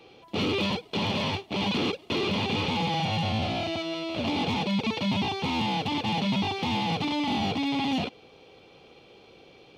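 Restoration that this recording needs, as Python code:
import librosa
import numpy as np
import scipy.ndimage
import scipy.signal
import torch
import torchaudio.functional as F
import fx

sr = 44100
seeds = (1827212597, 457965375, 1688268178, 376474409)

y = fx.fix_declip(x, sr, threshold_db=-19.0)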